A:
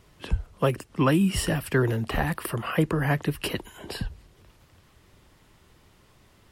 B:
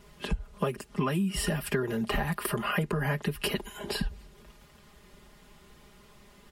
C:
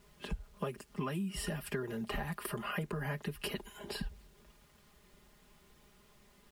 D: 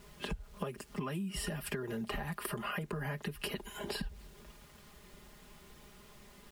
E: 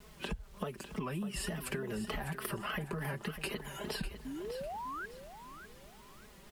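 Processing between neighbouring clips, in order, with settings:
comb 4.9 ms, depth 95%; compressor 12:1, threshold -25 dBFS, peak gain reduction 12.5 dB
bit-crush 10-bit; gain -8.5 dB
compressor 4:1, threshold -43 dBFS, peak gain reduction 10 dB; gain +7 dB
painted sound rise, 4.25–5.06, 250–1600 Hz -41 dBFS; vibrato 3.4 Hz 98 cents; on a send: feedback echo 0.6 s, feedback 30%, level -11 dB

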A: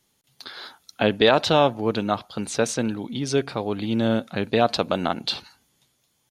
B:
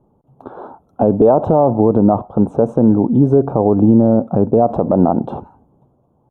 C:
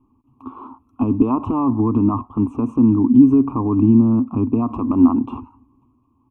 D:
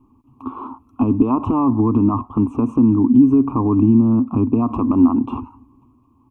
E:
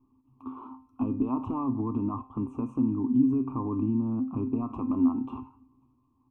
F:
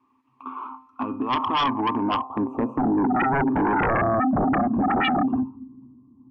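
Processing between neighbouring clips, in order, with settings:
inverse Chebyshev low-pass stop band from 1800 Hz, stop band 40 dB; maximiser +18.5 dB; gain -1 dB
EQ curve 110 Hz 0 dB, 170 Hz -18 dB, 260 Hz +8 dB, 550 Hz -25 dB, 780 Hz -15 dB, 1100 Hz +10 dB, 1700 Hz -23 dB, 2500 Hz +13 dB, 3800 Hz -11 dB, 5700 Hz -4 dB; gain -1 dB
compressor 1.5:1, threshold -25 dBFS, peak gain reduction 7 dB; gain +5.5 dB
resonator 130 Hz, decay 0.39 s, harmonics all, mix 70%; gain -5.5 dB
band-pass sweep 1900 Hz -> 210 Hz, 0.67–4.35; sine folder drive 18 dB, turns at -18 dBFS

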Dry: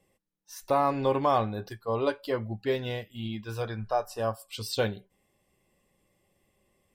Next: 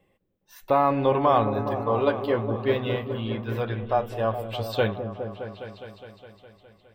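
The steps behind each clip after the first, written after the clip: band shelf 7500 Hz -14 dB; repeats that get brighter 0.206 s, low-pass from 400 Hz, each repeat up 1 oct, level -6 dB; gain +4 dB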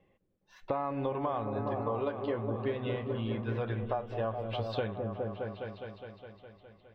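compressor 10:1, threshold -27 dBFS, peak gain reduction 12.5 dB; air absorption 200 m; gain -1.5 dB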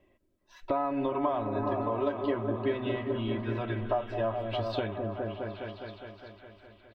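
comb 3.1 ms, depth 79%; delay with a stepping band-pass 0.383 s, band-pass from 1300 Hz, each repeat 0.7 oct, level -8 dB; gain +1.5 dB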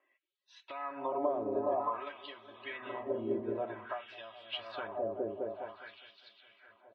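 LFO band-pass sine 0.52 Hz 410–3900 Hz; gain +3 dB; Vorbis 32 kbps 22050 Hz

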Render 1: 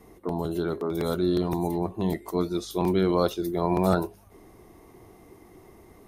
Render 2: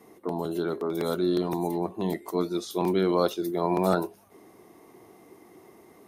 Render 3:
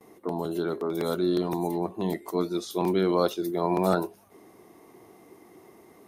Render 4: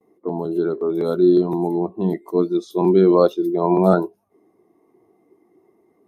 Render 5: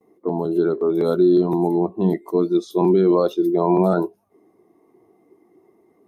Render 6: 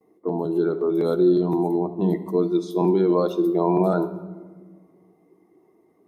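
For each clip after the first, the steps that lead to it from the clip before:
HPF 190 Hz 12 dB/oct
gate with hold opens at -50 dBFS
spectral expander 1.5:1; gain +8 dB
limiter -10 dBFS, peak gain reduction 7.5 dB; gain +2 dB
shoebox room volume 1400 m³, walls mixed, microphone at 0.54 m; gain -3 dB

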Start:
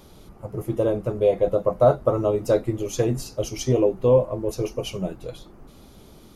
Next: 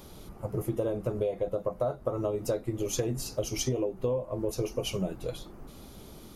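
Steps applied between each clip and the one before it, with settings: high shelf 9400 Hz +5.5 dB; compressor 12:1, threshold -26 dBFS, peak gain reduction 15.5 dB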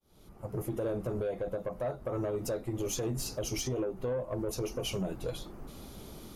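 opening faded in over 0.82 s; limiter -24 dBFS, peak gain reduction 7 dB; soft clip -27 dBFS, distortion -18 dB; gain +1 dB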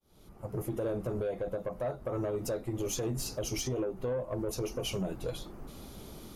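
nothing audible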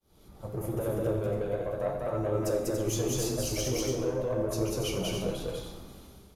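ending faded out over 1.06 s; on a send: loudspeakers at several distances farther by 67 m -1 dB, 98 m -6 dB; on the sum: plate-style reverb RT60 0.94 s, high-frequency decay 1×, pre-delay 0 ms, DRR 4.5 dB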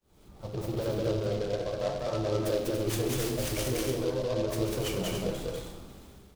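noise-modulated delay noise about 3500 Hz, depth 0.039 ms

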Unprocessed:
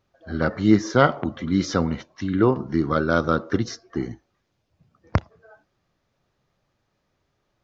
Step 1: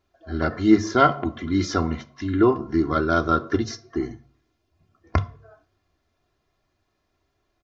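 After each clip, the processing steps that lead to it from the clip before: comb 2.9 ms, depth 72%; on a send at -10.5 dB: reverb RT60 0.45 s, pre-delay 3 ms; on the sum: gain -2 dB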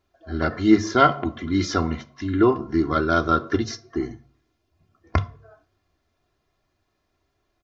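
dynamic EQ 3000 Hz, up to +3 dB, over -38 dBFS, Q 0.79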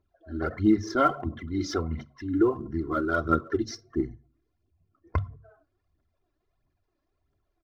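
formant sharpening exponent 1.5; phaser 1.5 Hz, delay 3.7 ms, feedback 56%; gain -7 dB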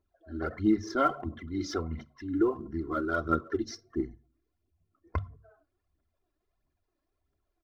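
bell 120 Hz -9.5 dB 0.37 oct; gain -3.5 dB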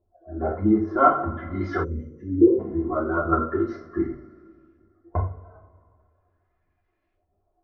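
LFO low-pass saw up 0.42 Hz 620–2500 Hz; two-slope reverb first 0.38 s, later 2.3 s, from -22 dB, DRR -5.5 dB; spectral gain 1.84–2.6, 600–5700 Hz -26 dB

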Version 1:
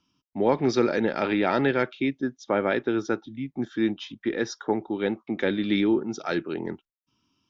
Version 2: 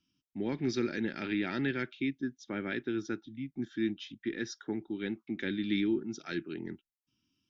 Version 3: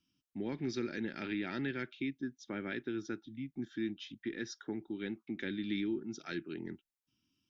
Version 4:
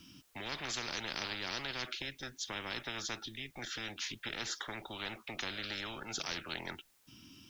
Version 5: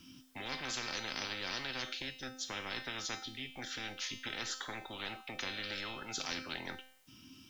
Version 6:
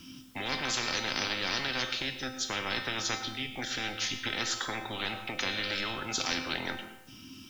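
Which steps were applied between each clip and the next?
band shelf 740 Hz -13.5 dB; gain -6.5 dB
compressor 1.5:1, threshold -37 dBFS, peak gain reduction 4.5 dB; gain -1.5 dB
spectral compressor 10:1; gain +5.5 dB
resonator 260 Hz, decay 0.6 s, harmonics all, mix 80%; gain +11.5 dB
reverb RT60 0.80 s, pre-delay 95 ms, DRR 10.5 dB; gain +7.5 dB

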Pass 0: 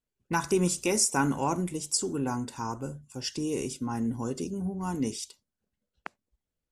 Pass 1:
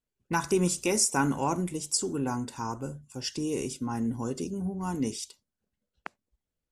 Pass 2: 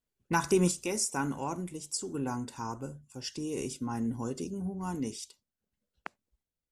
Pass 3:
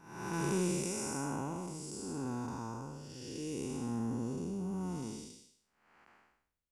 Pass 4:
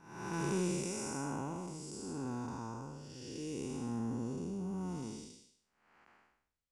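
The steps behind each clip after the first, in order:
nothing audible
random-step tremolo 1.4 Hz, depth 55%
time blur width 0.383 s
LPF 9200 Hz 12 dB/oct; gain -1.5 dB

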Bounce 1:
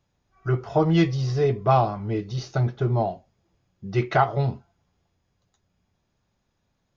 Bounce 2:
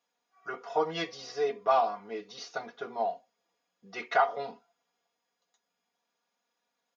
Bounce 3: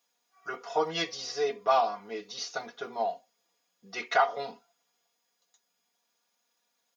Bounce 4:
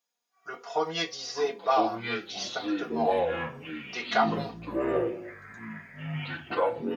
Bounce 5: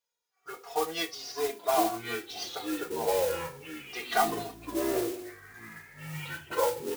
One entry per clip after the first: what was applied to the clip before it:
HPF 520 Hz 12 dB/oct; comb 4.2 ms, depth 86%; gain -5.5 dB
high shelf 4000 Hz +12 dB
AGC gain up to 9 dB; doubler 25 ms -13 dB; echoes that change speed 0.694 s, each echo -6 st, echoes 3; gain -8.5 dB
flange 0.31 Hz, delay 2 ms, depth 1 ms, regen -1%; modulation noise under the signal 11 dB

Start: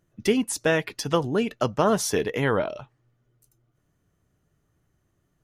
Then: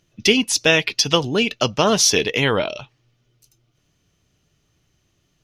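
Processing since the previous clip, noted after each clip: band shelf 3800 Hz +12.5 dB; gain +3.5 dB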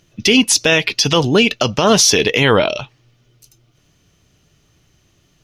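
limiter -11 dBFS, peak gain reduction 9.5 dB; gain +8.5 dB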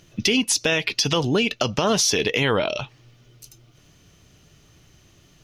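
compressor 2.5:1, threshold -26 dBFS, peak gain reduction 12.5 dB; gain +3 dB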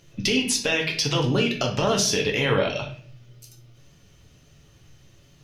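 reverb RT60 0.50 s, pre-delay 7 ms, DRR 0.5 dB; gain -4.5 dB

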